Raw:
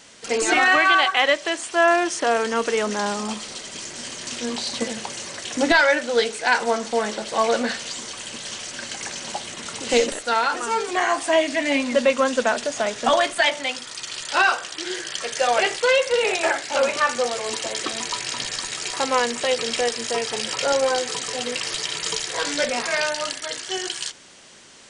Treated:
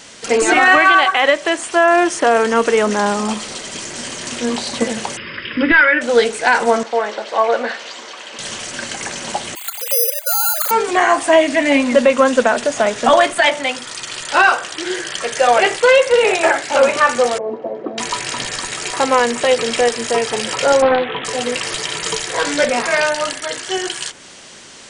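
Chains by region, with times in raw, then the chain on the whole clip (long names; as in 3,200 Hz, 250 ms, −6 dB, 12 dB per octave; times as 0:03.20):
0:05.17–0:06.01: linear-phase brick-wall low-pass 5,200 Hz + high-shelf EQ 3,200 Hz +9 dB + phaser with its sweep stopped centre 1,800 Hz, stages 4
0:06.83–0:08.39: high-pass filter 480 Hz + head-to-tape spacing loss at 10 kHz 22 dB
0:09.55–0:10.71: three sine waves on the formant tracks + bad sample-rate conversion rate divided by 8×, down none, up zero stuff
0:17.38–0:17.98: Chebyshev band-pass filter 190–650 Hz + high-frequency loss of the air 60 metres
0:20.82–0:21.25: linear-phase brick-wall low-pass 3,400 Hz + highs frequency-modulated by the lows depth 0.34 ms
whole clip: dynamic equaliser 4,800 Hz, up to −7 dB, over −38 dBFS, Q 0.78; boost into a limiter +9.5 dB; level −1 dB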